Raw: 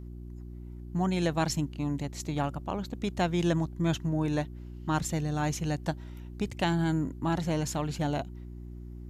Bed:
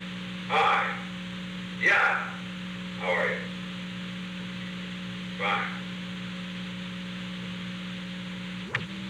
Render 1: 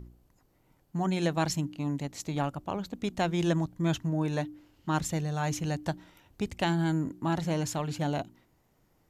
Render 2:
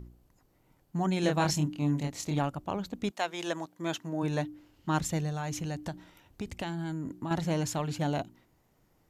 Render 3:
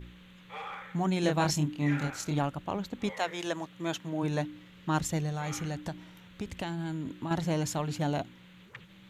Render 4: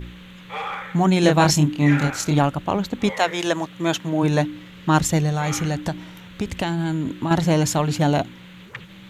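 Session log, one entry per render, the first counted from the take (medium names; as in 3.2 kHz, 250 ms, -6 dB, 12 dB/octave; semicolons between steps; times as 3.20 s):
de-hum 60 Hz, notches 6
1.21–2.39 s: doubling 27 ms -3 dB; 3.10–4.22 s: high-pass 710 Hz -> 240 Hz; 5.29–7.31 s: compression, threshold -31 dBFS
add bed -18 dB
trim +11.5 dB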